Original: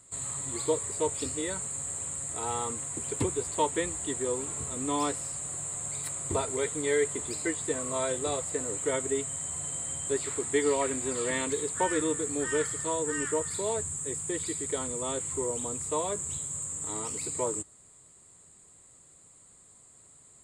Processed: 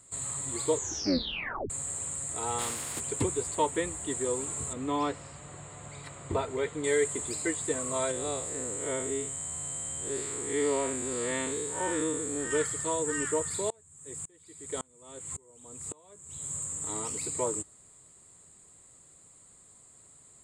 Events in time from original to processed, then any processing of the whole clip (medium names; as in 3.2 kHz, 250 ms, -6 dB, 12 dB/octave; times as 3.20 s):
0.73 s: tape stop 0.97 s
2.58–2.99 s: spectral contrast reduction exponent 0.46
3.55–4.11 s: peaking EQ 5.9 kHz -4.5 dB 1.5 oct
4.73–6.84 s: low-pass 3.5 kHz
8.11–12.51 s: spectral blur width 125 ms
13.70–16.48 s: sawtooth tremolo in dB swelling 1.8 Hz, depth 33 dB